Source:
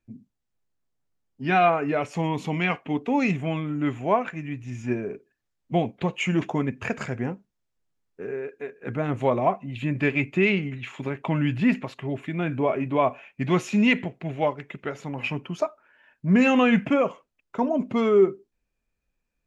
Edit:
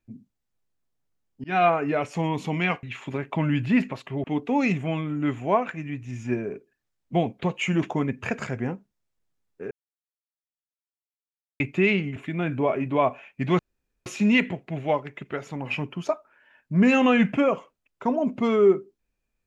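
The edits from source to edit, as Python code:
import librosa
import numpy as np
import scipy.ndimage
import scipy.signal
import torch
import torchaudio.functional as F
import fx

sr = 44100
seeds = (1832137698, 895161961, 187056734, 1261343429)

y = fx.edit(x, sr, fx.fade_in_span(start_s=1.44, length_s=0.25, curve='qsin'),
    fx.silence(start_s=8.3, length_s=1.89),
    fx.move(start_s=10.75, length_s=1.41, to_s=2.83),
    fx.insert_room_tone(at_s=13.59, length_s=0.47), tone=tone)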